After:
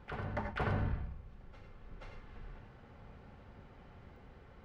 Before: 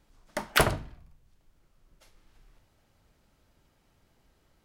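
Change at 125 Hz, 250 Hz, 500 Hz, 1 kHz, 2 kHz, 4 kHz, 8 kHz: -1.0 dB, -4.0 dB, -9.5 dB, -9.0 dB, -12.0 dB, -21.0 dB, under -30 dB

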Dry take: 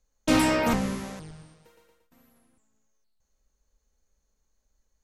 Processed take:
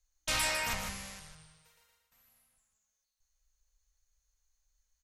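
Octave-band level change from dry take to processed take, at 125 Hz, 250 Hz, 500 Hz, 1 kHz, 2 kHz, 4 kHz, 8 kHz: -13.5, -24.5, -15.5, -9.5, -3.5, -1.5, 0.0 dB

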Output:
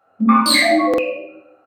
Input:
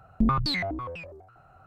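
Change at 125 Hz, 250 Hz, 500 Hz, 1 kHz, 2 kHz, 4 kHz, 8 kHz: n/a, +12.0 dB, +19.0 dB, +13.5 dB, +15.5 dB, +14.0 dB, +29.0 dB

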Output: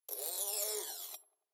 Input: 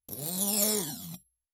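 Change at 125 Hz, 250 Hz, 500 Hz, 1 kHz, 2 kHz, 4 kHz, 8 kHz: under -40 dB, -27.5 dB, -8.5 dB, -7.5 dB, -8.0 dB, -8.0 dB, -8.0 dB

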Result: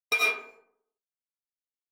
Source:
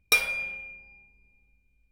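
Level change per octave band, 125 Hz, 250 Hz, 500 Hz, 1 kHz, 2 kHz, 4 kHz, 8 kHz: n/a, 0.0 dB, +2.5 dB, +3.5 dB, -1.5 dB, -4.0 dB, -7.0 dB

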